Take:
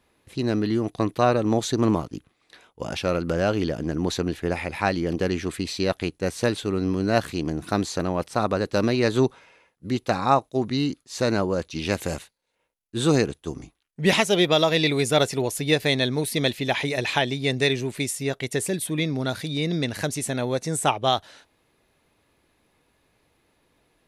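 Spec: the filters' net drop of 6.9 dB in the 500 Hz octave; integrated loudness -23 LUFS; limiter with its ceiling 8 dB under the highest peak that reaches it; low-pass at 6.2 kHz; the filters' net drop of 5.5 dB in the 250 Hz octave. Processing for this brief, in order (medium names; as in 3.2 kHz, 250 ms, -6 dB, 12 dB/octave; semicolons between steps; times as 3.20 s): low-pass 6.2 kHz; peaking EQ 250 Hz -5 dB; peaking EQ 500 Hz -7.5 dB; trim +6 dB; peak limiter -9 dBFS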